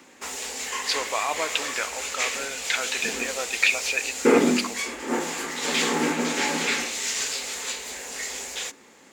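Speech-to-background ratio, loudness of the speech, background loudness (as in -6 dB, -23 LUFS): -1.0 dB, -27.5 LUFS, -26.5 LUFS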